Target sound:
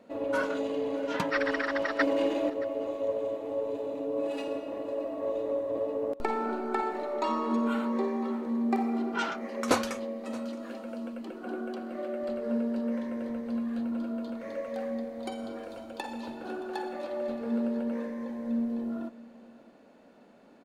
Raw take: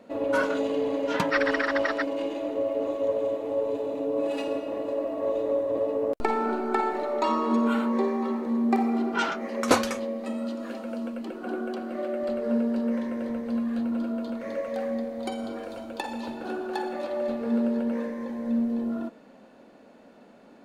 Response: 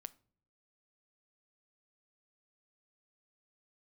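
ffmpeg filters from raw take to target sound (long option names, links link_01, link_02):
-filter_complex "[0:a]asettb=1/sr,asplit=3[link_01][link_02][link_03];[link_01]atrim=end=1.994[link_04];[link_02]atrim=start=1.99:end=2.5,asetpts=PTS-STARTPTS,afade=type=in:duration=0.004:curve=qsin,afade=type=out:start_time=0.506:duration=0.004:curve=qsin,acontrast=85[link_05];[link_03]atrim=start=2.496[link_06];[link_04][link_05]acrossfade=duration=0.004:curve1=hsin:curve2=qsin[link_07];[link_07][link_06]acrossfade=duration=0.004:curve1=qsin:curve2=hsin,asplit=2[link_08][link_09];[link_09]aecho=0:1:623:0.1[link_10];[link_08][link_10]amix=inputs=2:normalize=0,volume=-4.5dB"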